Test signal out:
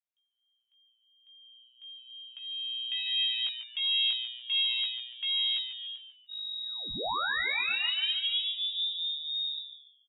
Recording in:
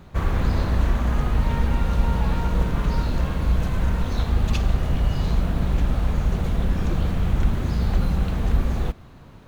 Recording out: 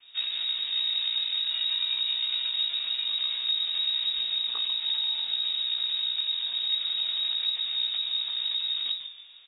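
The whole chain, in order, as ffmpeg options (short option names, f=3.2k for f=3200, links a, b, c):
-filter_complex "[0:a]adynamicequalizer=threshold=0.0158:dfrequency=220:dqfactor=0.85:tfrequency=220:tqfactor=0.85:attack=5:release=100:ratio=0.375:range=2.5:mode=cutabove:tftype=bell,aecho=1:1:4.2:0.33,alimiter=limit=-13.5dB:level=0:latency=1:release=135,aeval=exprs='0.211*(cos(1*acos(clip(val(0)/0.211,-1,1)))-cos(1*PI/2))+0.106*(cos(2*acos(clip(val(0)/0.211,-1,1)))-cos(2*PI/2))+0.0188*(cos(5*acos(clip(val(0)/0.211,-1,1)))-cos(5*PI/2))':c=same,flanger=delay=15:depth=4.9:speed=0.37,asplit=5[a][b][c][d][e];[b]adelay=144,afreqshift=120,volume=-10dB[f];[c]adelay=288,afreqshift=240,volume=-19.9dB[g];[d]adelay=432,afreqshift=360,volume=-29.8dB[h];[e]adelay=576,afreqshift=480,volume=-39.7dB[i];[a][f][g][h][i]amix=inputs=5:normalize=0,lowpass=f=3.2k:t=q:w=0.5098,lowpass=f=3.2k:t=q:w=0.6013,lowpass=f=3.2k:t=q:w=0.9,lowpass=f=3.2k:t=q:w=2.563,afreqshift=-3800,volume=-7.5dB"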